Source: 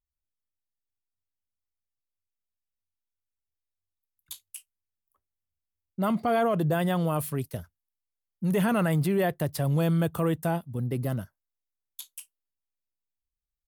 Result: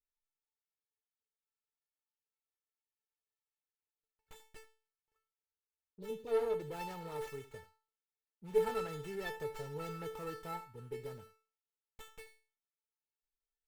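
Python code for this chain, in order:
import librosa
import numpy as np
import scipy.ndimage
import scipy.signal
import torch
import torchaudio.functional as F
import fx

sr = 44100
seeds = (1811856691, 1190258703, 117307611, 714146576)

y = fx.spec_erase(x, sr, start_s=5.2, length_s=1.08, low_hz=590.0, high_hz=2800.0)
y = fx.vibrato(y, sr, rate_hz=6.1, depth_cents=23.0)
y = fx.comb_fb(y, sr, f0_hz=440.0, decay_s=0.38, harmonics='all', damping=0.0, mix_pct=100)
y = y + 10.0 ** (-16.5 / 20.0) * np.pad(y, (int(83 * sr / 1000.0), 0))[:len(y)]
y = fx.running_max(y, sr, window=9)
y = F.gain(torch.from_numpy(y), 9.5).numpy()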